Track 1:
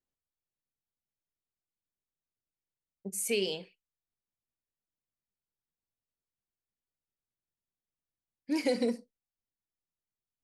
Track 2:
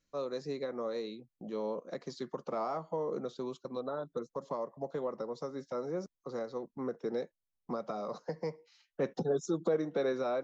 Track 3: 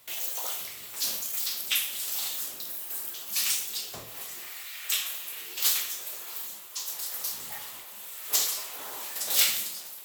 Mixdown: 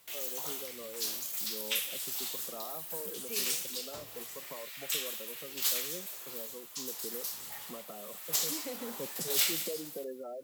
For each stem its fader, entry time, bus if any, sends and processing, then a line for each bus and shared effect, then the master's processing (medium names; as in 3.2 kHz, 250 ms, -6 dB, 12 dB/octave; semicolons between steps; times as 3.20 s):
-13.0 dB, 0.00 s, no send, no echo send, none
-9.0 dB, 0.00 s, no send, no echo send, spectral gate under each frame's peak -15 dB strong; word length cut 10-bit, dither triangular
-5.5 dB, 0.00 s, no send, echo send -15.5 dB, none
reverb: none
echo: delay 190 ms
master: none